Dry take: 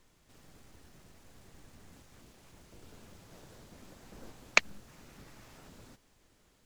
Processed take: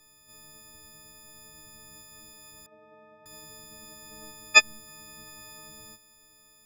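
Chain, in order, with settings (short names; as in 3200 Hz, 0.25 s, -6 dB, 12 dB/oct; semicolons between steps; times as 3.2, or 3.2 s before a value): frequency quantiser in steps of 6 st; 2.66–3.26 speaker cabinet 240–2000 Hz, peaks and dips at 300 Hz -4 dB, 610 Hz +6 dB, 1900 Hz -6 dB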